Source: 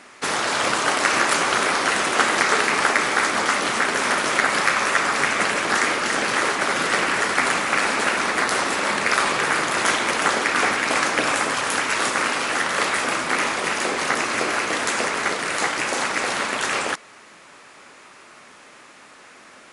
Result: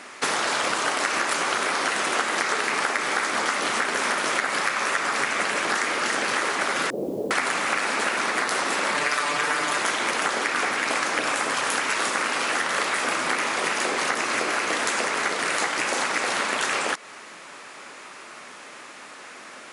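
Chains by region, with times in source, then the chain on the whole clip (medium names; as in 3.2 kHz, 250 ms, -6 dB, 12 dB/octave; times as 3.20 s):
6.90–7.31 s: steep low-pass 560 Hz + word length cut 10-bit, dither triangular
8.94–9.78 s: hum notches 50/100/150/200/250/300/350/400/450 Hz + comb 6.8 ms, depth 86%
whole clip: high-pass 210 Hz 6 dB/octave; compression, threshold -26 dBFS; trim +4.5 dB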